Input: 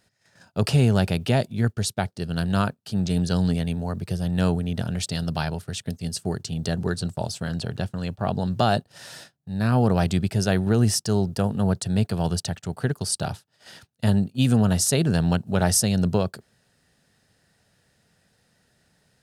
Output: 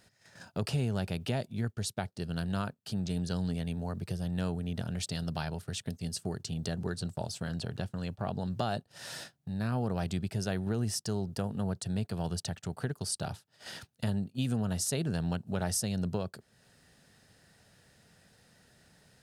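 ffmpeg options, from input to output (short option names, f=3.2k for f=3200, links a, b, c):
-af "acompressor=threshold=-43dB:ratio=2,volume=2.5dB"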